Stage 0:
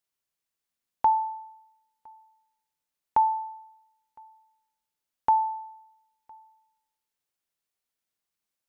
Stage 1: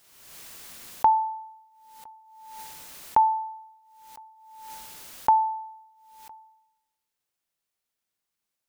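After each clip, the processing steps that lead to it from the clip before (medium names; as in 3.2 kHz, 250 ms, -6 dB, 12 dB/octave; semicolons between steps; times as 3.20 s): swell ahead of each attack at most 43 dB/s; trim +2 dB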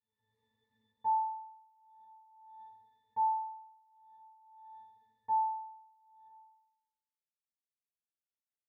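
pitch-class resonator A, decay 0.37 s; transient shaper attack +2 dB, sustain -3 dB; trim -8.5 dB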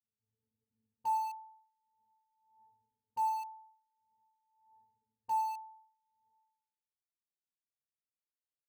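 level-controlled noise filter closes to 310 Hz, open at -33 dBFS; in parallel at -10.5 dB: word length cut 6-bit, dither none; on the sum: trim -4.5 dB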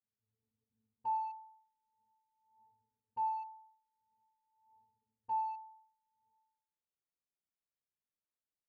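tape spacing loss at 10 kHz 42 dB; trim +1 dB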